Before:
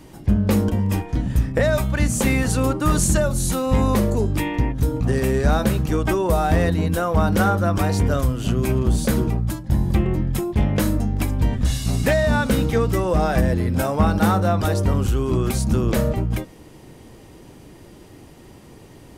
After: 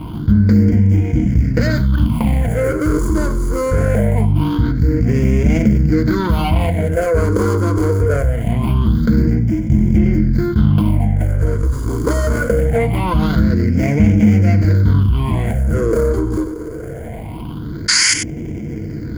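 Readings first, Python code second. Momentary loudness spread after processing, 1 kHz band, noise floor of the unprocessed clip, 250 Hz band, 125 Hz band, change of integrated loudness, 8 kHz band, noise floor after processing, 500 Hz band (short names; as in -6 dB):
9 LU, -1.0 dB, -45 dBFS, +6.0 dB, +6.5 dB, +5.0 dB, +4.5 dB, -27 dBFS, +3.0 dB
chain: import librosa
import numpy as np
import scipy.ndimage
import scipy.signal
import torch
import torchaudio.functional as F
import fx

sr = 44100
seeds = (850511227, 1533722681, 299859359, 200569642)

y = scipy.signal.medfilt(x, 41)
y = fx.spec_paint(y, sr, seeds[0], shape='noise', start_s=17.88, length_s=0.26, low_hz=820.0, high_hz=11000.0, level_db=-18.0)
y = fx.highpass(y, sr, hz=81.0, slope=6)
y = fx.peak_eq(y, sr, hz=250.0, db=2.5, octaves=0.77)
y = y + 10.0 ** (-15.5 / 20.0) * np.pad(y, (int(95 * sr / 1000.0), 0))[:len(y)]
y = fx.phaser_stages(y, sr, stages=6, low_hz=180.0, high_hz=1100.0, hz=0.23, feedback_pct=45)
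y = fx.ripple_eq(y, sr, per_octave=1.8, db=9)
y = fx.env_flatten(y, sr, amount_pct=50)
y = F.gain(torch.from_numpy(y), 2.5).numpy()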